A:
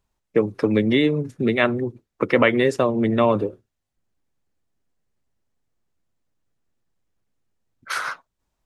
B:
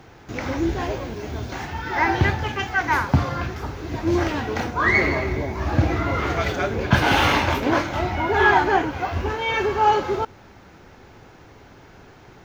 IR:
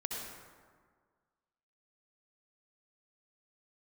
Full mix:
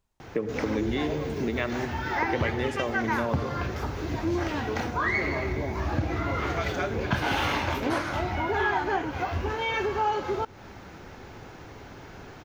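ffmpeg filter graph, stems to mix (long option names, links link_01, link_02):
-filter_complex "[0:a]volume=-4dB,asplit=2[link_01][link_02];[link_02]volume=-8dB[link_03];[1:a]adelay=200,volume=2.5dB[link_04];[2:a]atrim=start_sample=2205[link_05];[link_03][link_05]afir=irnorm=-1:irlink=0[link_06];[link_01][link_04][link_06]amix=inputs=3:normalize=0,acompressor=threshold=-29dB:ratio=2.5"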